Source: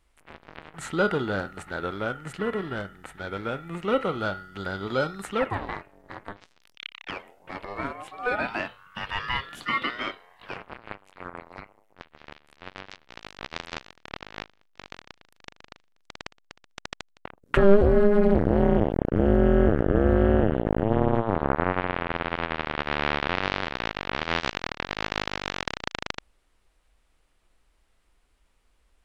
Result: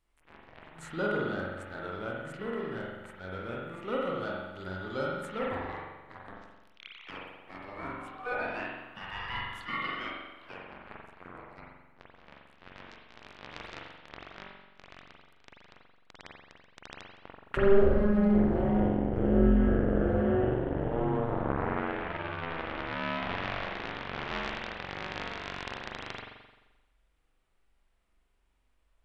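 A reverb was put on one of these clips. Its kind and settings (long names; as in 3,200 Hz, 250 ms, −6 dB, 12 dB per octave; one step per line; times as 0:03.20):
spring reverb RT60 1.1 s, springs 43 ms, chirp 70 ms, DRR −3 dB
level −11 dB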